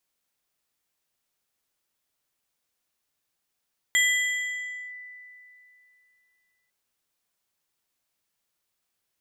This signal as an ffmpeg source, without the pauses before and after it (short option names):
-f lavfi -i "aevalsrc='0.141*pow(10,-3*t/2.83)*sin(2*PI*1990*t+0.83*clip(1-t/0.98,0,1)*sin(2*PI*2.63*1990*t))':d=2.75:s=44100"